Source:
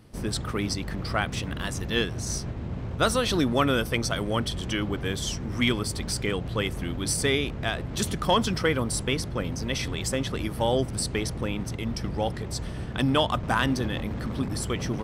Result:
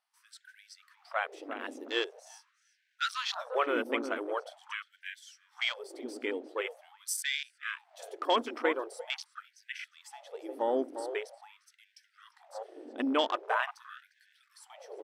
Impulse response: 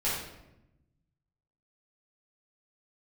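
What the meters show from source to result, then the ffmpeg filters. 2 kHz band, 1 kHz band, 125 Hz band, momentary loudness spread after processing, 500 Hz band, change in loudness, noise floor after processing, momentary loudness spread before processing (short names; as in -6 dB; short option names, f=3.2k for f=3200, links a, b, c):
-5.5 dB, -5.0 dB, under -40 dB, 19 LU, -6.5 dB, -7.0 dB, -74 dBFS, 7 LU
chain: -filter_complex "[0:a]asplit=2[a][b];[b]adelay=352,lowpass=f=1.7k:p=1,volume=-8dB,asplit=2[c][d];[d]adelay=352,lowpass=f=1.7k:p=1,volume=0.26,asplit=2[e][f];[f]adelay=352,lowpass=f=1.7k:p=1,volume=0.26[g];[a][c][e][g]amix=inputs=4:normalize=0,afwtdn=0.0251,afftfilt=real='re*gte(b*sr/1024,220*pow(1500/220,0.5+0.5*sin(2*PI*0.44*pts/sr)))':imag='im*gte(b*sr/1024,220*pow(1500/220,0.5+0.5*sin(2*PI*0.44*pts/sr)))':win_size=1024:overlap=0.75,volume=-4.5dB"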